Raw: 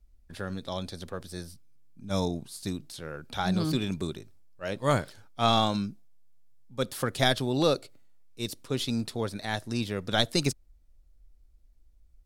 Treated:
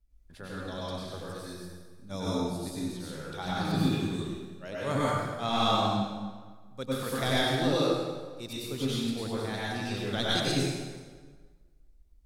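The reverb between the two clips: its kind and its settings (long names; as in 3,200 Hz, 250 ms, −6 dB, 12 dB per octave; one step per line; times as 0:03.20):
dense smooth reverb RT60 1.5 s, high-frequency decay 0.75×, pre-delay 85 ms, DRR −8 dB
level −9 dB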